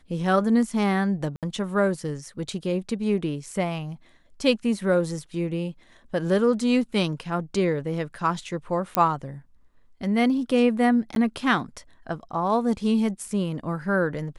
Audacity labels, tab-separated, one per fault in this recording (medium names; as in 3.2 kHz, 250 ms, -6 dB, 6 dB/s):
1.360000	1.430000	dropout 67 ms
8.950000	8.950000	pop -6 dBFS
11.150000	11.160000	dropout 12 ms